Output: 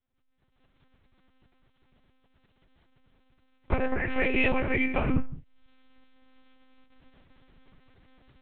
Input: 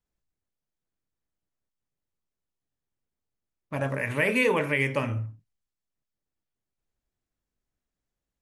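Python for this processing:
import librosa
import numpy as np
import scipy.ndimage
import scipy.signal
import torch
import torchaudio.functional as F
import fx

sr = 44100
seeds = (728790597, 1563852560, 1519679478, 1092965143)

y = fx.recorder_agc(x, sr, target_db=-16.5, rise_db_per_s=51.0, max_gain_db=30)
y = fx.pitch_keep_formants(y, sr, semitones=-5.5)
y = fx.lpc_monotone(y, sr, seeds[0], pitch_hz=260.0, order=8)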